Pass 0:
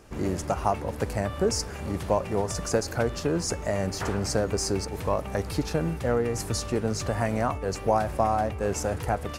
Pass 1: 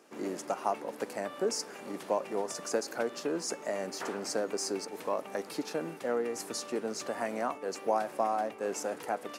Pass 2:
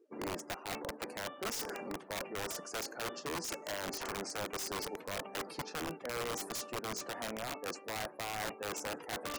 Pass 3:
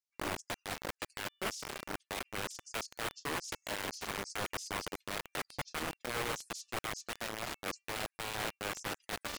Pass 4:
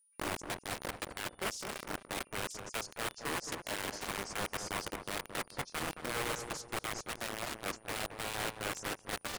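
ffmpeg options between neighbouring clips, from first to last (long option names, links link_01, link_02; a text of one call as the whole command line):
ffmpeg -i in.wav -af "highpass=frequency=240:width=0.5412,highpass=frequency=240:width=1.3066,volume=-5.5dB" out.wav
ffmpeg -i in.wav -af "afftdn=noise_reduction=31:noise_floor=-49,areverse,acompressor=threshold=-41dB:ratio=12,areverse,aeval=exprs='(mod(79.4*val(0)+1,2)-1)/79.4':channel_layout=same,volume=6dB" out.wav
ffmpeg -i in.wav -filter_complex "[0:a]lowpass=6700,acrossover=split=3900[link_01][link_02];[link_01]acrusher=bits=5:mix=0:aa=0.000001[link_03];[link_03][link_02]amix=inputs=2:normalize=0" out.wav
ffmpeg -i in.wav -filter_complex "[0:a]equalizer=frequency=9400:width_type=o:width=0.57:gain=3.5,aeval=exprs='val(0)+0.000398*sin(2*PI*9600*n/s)':channel_layout=same,asplit=2[link_01][link_02];[link_02]adelay=220,lowpass=frequency=1200:poles=1,volume=-6dB,asplit=2[link_03][link_04];[link_04]adelay=220,lowpass=frequency=1200:poles=1,volume=0.4,asplit=2[link_05][link_06];[link_06]adelay=220,lowpass=frequency=1200:poles=1,volume=0.4,asplit=2[link_07][link_08];[link_08]adelay=220,lowpass=frequency=1200:poles=1,volume=0.4,asplit=2[link_09][link_10];[link_10]adelay=220,lowpass=frequency=1200:poles=1,volume=0.4[link_11];[link_03][link_05][link_07][link_09][link_11]amix=inputs=5:normalize=0[link_12];[link_01][link_12]amix=inputs=2:normalize=0" out.wav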